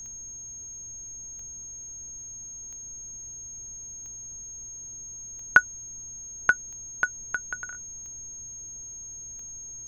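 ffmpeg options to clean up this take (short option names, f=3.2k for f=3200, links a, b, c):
-af "adeclick=t=4,bandreject=f=109.2:t=h:w=4,bandreject=f=218.4:t=h:w=4,bandreject=f=327.6:t=h:w=4,bandreject=f=436.8:t=h:w=4,bandreject=f=6.5k:w=30,afftdn=nr=30:nf=-41"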